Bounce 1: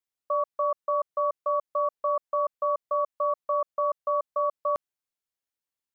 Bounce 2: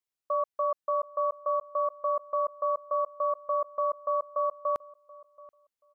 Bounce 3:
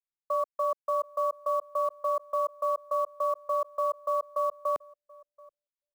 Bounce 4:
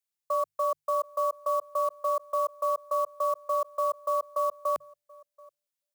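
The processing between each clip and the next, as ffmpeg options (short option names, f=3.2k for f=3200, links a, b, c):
-filter_complex "[0:a]asplit=2[a][b];[b]adelay=730,lowpass=f=1.2k:p=1,volume=-20dB,asplit=2[c][d];[d]adelay=730,lowpass=f=1.2k:p=1,volume=0.2[e];[a][c][e]amix=inputs=3:normalize=0,volume=-2dB"
-filter_complex "[0:a]anlmdn=0.0631,acrossover=split=390|720[a][b][c];[c]acrusher=bits=6:mode=log:mix=0:aa=0.000001[d];[a][b][d]amix=inputs=3:normalize=0"
-af "highpass=83,highshelf=f=3k:g=8.5,bandreject=f=50:t=h:w=6,bandreject=f=100:t=h:w=6,bandreject=f=150:t=h:w=6"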